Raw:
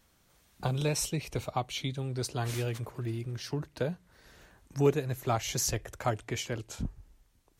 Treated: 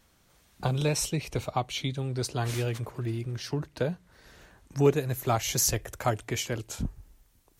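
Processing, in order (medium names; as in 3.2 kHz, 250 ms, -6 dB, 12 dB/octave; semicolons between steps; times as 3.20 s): treble shelf 11 kHz -3 dB, from 4.96 s +10.5 dB; trim +3 dB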